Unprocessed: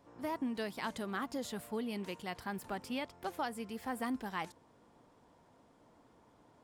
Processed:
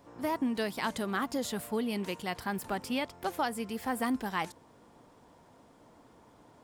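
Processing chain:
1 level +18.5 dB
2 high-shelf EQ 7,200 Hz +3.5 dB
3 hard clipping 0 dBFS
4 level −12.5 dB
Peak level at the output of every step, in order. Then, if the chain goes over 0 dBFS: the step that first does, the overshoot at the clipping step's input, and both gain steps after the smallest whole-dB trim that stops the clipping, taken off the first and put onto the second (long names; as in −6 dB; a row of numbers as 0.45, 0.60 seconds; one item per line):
−5.5, −5.5, −5.5, −18.0 dBFS
no step passes full scale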